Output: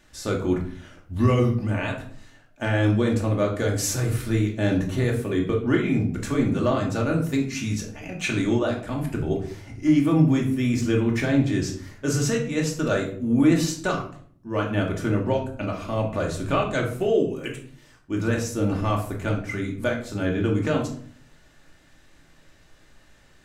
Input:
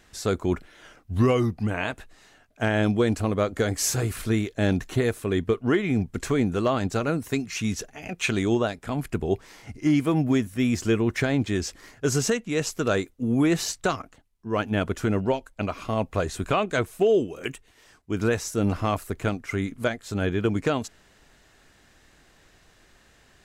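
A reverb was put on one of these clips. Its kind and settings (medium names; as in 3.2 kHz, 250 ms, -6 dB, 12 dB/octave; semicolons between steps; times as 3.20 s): simulated room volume 650 m³, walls furnished, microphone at 2.5 m; trim -3.5 dB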